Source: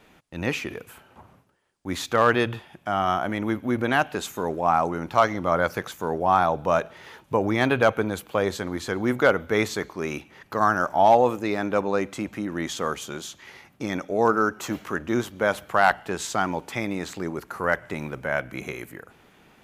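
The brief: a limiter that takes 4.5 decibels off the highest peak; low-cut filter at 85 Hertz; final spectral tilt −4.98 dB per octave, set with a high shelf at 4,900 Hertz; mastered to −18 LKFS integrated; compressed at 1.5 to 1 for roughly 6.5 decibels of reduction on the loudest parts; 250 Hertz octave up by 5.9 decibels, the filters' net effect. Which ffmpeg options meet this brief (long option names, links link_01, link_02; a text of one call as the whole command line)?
ffmpeg -i in.wav -af "highpass=85,equalizer=frequency=250:width_type=o:gain=7.5,highshelf=frequency=4900:gain=-4,acompressor=threshold=-30dB:ratio=1.5,volume=11dB,alimiter=limit=-4.5dB:level=0:latency=1" out.wav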